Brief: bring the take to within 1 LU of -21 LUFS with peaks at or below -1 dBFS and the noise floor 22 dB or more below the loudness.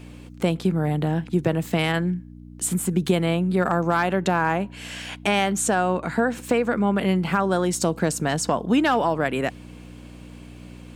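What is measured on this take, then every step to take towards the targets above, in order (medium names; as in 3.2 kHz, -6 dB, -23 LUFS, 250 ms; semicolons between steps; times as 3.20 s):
hum 60 Hz; highest harmonic 300 Hz; hum level -41 dBFS; loudness -23.0 LUFS; peak level -8.0 dBFS; loudness target -21.0 LUFS
-> de-hum 60 Hz, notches 5; trim +2 dB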